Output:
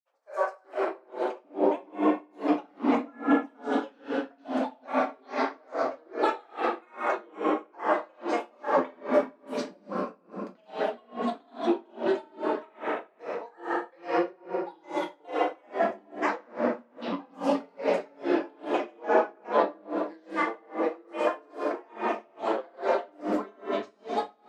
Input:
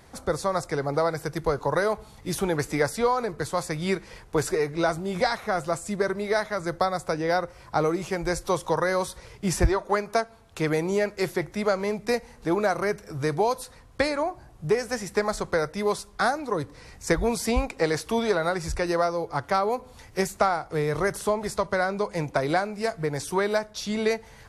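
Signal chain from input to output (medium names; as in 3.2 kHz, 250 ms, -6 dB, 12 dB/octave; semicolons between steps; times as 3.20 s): Chebyshev high-pass 390 Hz, order 4; band-stop 1.5 kHz; granulator, pitch spread up and down by 12 st; tape spacing loss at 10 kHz 23 dB; feedback echo behind a high-pass 242 ms, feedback 50%, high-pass 5 kHz, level -12 dB; reverberation RT60 2.8 s, pre-delay 6 ms, DRR -6 dB; logarithmic tremolo 2.4 Hz, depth 34 dB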